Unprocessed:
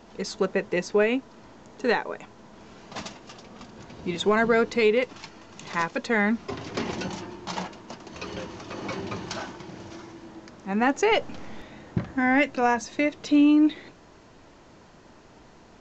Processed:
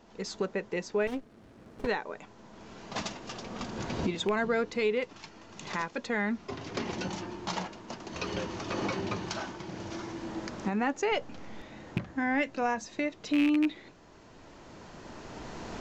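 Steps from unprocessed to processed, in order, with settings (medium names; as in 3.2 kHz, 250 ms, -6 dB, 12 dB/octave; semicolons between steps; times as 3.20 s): rattle on loud lows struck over -23 dBFS, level -15 dBFS; recorder AGC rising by 9.3 dB/s; 1.07–1.87 s: sliding maximum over 33 samples; trim -7.5 dB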